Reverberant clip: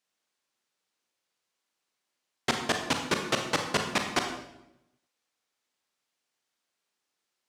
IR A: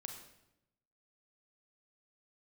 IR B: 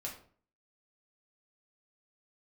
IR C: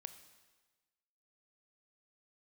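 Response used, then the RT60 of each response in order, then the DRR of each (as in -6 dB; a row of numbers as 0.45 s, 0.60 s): A; 0.85 s, 0.50 s, 1.3 s; 3.5 dB, -3.0 dB, 10.0 dB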